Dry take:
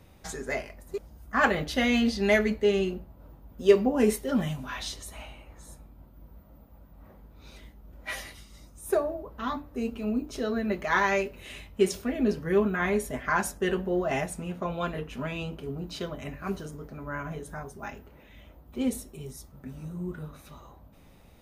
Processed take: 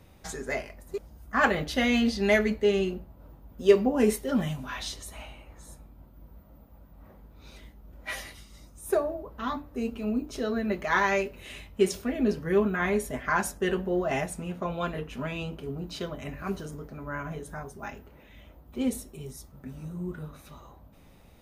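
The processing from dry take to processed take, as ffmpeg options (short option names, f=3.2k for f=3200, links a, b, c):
-filter_complex "[0:a]asettb=1/sr,asplit=3[a][b][c];[a]atrim=end=16.294[d];[b]atrim=start=16.29:end=16.83,asetpts=PTS-STARTPTS,afade=t=in:d=0.004:c=qsin,afade=t=out:st=0.536:d=0.004:c=qsin,acompressor=mode=upward:threshold=-34dB:ratio=2.5:attack=3.2:release=140:knee=2.83:detection=peak[e];[c]atrim=start=16.826[f];[d][e]acrossfade=d=0.004:c1=hsin:c2=qsin[g];[g][f]acrossfade=d=0.004:c1=qsin:c2=hsin"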